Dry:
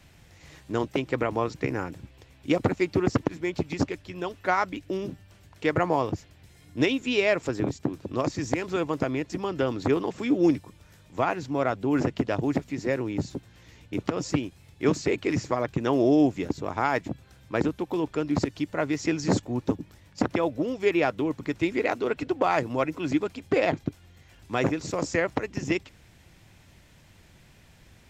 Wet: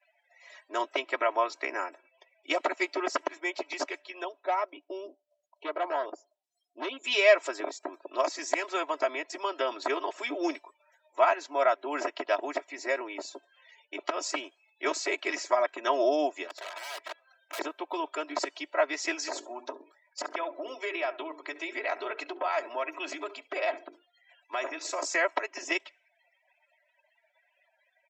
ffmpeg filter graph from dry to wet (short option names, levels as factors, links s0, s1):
-filter_complex "[0:a]asettb=1/sr,asplit=3[s0][s1][s2];[s0]atrim=end=4.244[s3];[s1]atrim=start=4.24:end=7.04,asetpts=PTS-STARTPTS,afade=t=in:d=0.004:c=qsin,afade=t=out:st=2.796:d=0.004:c=qsin,acrossover=split=3100[s4][s5];[s5]acompressor=threshold=0.00224:ratio=4:attack=1:release=60[s6];[s4][s6]amix=inputs=2:normalize=0,equalizer=f=1700:t=o:w=1.5:g=-13.5,asoftclip=type=hard:threshold=0.0708[s7];[s2]atrim=start=7.036[s8];[s3][s7]acrossfade=d=0.004:c1=hsin:c2=qsin[s9];[s9][s8]acrossfade=d=0.004:c1=qsin:c2=hsin,asettb=1/sr,asplit=3[s10][s11][s12];[s10]atrim=end=16.474[s13];[s11]atrim=start=16.47:end=17.59,asetpts=PTS-STARTPTS,afade=t=in:d=0.004:c=qsin,afade=t=out:st=1.116:d=0.004:c=qsin,acompressor=threshold=0.0447:ratio=16:attack=3.2:release=140:knee=1:detection=peak,aeval=exprs='(mod(42.2*val(0)+1,2)-1)/42.2':c=same,adynamicequalizer=threshold=0.00178:dfrequency=4300:dqfactor=0.7:tfrequency=4300:tqfactor=0.7:attack=5:release=100:ratio=0.375:range=3:mode=cutabove:tftype=highshelf[s14];[s12]atrim=start=17.586[s15];[s13][s14]acrossfade=d=0.004:c1=hsin:c2=qsin[s16];[s16][s15]acrossfade=d=0.004:c1=qsin:c2=hsin,asettb=1/sr,asplit=3[s17][s18][s19];[s17]atrim=end=19.194[s20];[s18]atrim=start=19.19:end=25.02,asetpts=PTS-STARTPTS,afade=t=in:d=0.004:c=qsin,afade=t=out:st=5.826:d=0.004:c=qsin,bandreject=f=50:t=h:w=6,bandreject=f=100:t=h:w=6,bandreject=f=150:t=h:w=6,bandreject=f=200:t=h:w=6,bandreject=f=250:t=h:w=6,bandreject=f=300:t=h:w=6,bandreject=f=350:t=h:w=6,bandreject=f=400:t=h:w=6,bandreject=f=450:t=h:w=6,acompressor=threshold=0.0562:ratio=12:attack=3.2:release=140:knee=1:detection=peak,aecho=1:1:69|138|207:0.15|0.0479|0.0153,atrim=end_sample=257103[s21];[s19]atrim=start=25.016[s22];[s20][s21]acrossfade=d=0.004:c1=hsin:c2=qsin[s23];[s23][s22]acrossfade=d=0.004:c1=qsin:c2=hsin,highpass=f=530:w=0.5412,highpass=f=530:w=1.3066,afftdn=nr=35:nf=-55,aecho=1:1:3.1:0.99"